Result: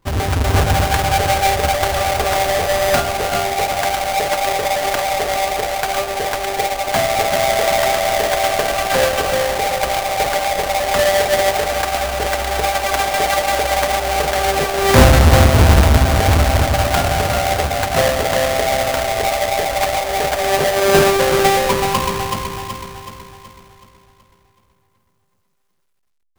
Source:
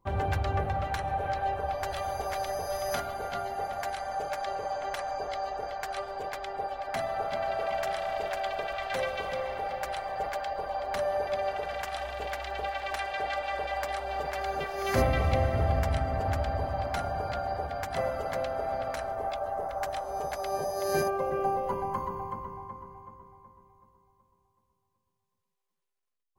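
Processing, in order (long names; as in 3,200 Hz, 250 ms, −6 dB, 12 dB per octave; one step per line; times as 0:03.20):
each half-wave held at its own peak
automatic gain control gain up to 6.5 dB
level +5 dB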